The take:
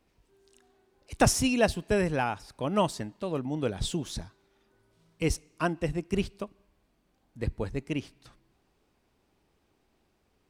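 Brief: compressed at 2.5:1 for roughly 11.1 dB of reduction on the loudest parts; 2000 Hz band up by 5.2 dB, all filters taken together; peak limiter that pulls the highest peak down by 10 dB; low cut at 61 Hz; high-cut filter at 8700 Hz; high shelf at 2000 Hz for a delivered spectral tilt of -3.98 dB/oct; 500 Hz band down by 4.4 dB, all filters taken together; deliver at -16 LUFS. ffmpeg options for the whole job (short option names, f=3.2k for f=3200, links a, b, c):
-af "highpass=61,lowpass=8.7k,equalizer=f=500:t=o:g=-6.5,highshelf=f=2k:g=5.5,equalizer=f=2k:t=o:g=4,acompressor=threshold=-35dB:ratio=2.5,volume=24.5dB,alimiter=limit=-4.5dB:level=0:latency=1"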